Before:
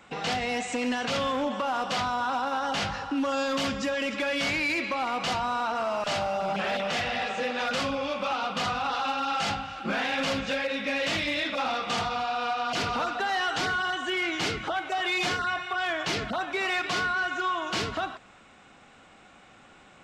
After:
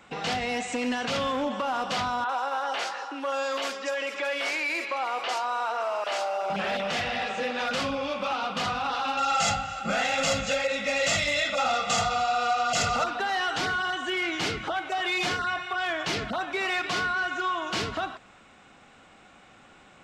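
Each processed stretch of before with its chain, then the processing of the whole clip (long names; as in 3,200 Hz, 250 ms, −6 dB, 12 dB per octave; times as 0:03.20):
0:02.24–0:06.50: high-pass filter 380 Hz 24 dB per octave + multiband delay without the direct sound lows, highs 50 ms, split 4,000 Hz
0:09.17–0:13.04: parametric band 7,100 Hz +14.5 dB 0.41 octaves + comb filter 1.5 ms, depth 75%
whole clip: no processing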